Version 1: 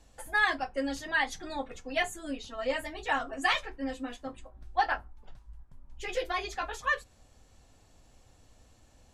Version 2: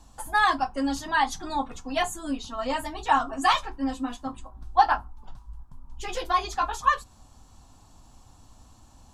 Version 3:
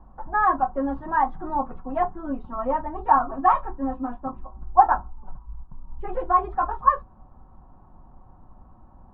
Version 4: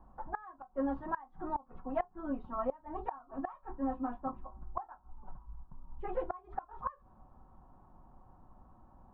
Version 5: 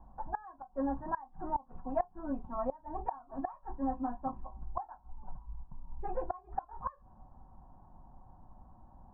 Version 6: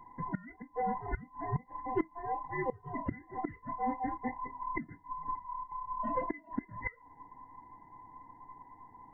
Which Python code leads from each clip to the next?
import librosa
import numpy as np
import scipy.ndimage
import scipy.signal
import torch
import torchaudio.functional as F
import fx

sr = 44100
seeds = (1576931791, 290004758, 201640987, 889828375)

y1 = fx.graphic_eq(x, sr, hz=(250, 500, 1000, 2000), db=(3, -11, 10, -11))
y1 = F.gain(torch.from_numpy(y1), 7.0).numpy()
y2 = scipy.signal.sosfilt(scipy.signal.butter(4, 1300.0, 'lowpass', fs=sr, output='sos'), y1)
y2 = y2 + 0.36 * np.pad(y2, (int(5.4 * sr / 1000.0), 0))[:len(y2)]
y2 = F.gain(torch.from_numpy(y2), 3.5).numpy()
y3 = fx.low_shelf(y2, sr, hz=170.0, db=-4.5)
y3 = fx.gate_flip(y3, sr, shuts_db=-16.0, range_db=-25)
y3 = F.gain(torch.from_numpy(y3), -6.0).numpy()
y4 = scipy.signal.sosfilt(scipy.signal.butter(2, 1200.0, 'lowpass', fs=sr, output='sos'), y3)
y4 = y4 + 0.39 * np.pad(y4, (int(1.2 * sr / 1000.0), 0))[:len(y4)]
y4 = F.gain(torch.from_numpy(y4), 1.0).numpy()
y5 = fx.band_invert(y4, sr, width_hz=1000)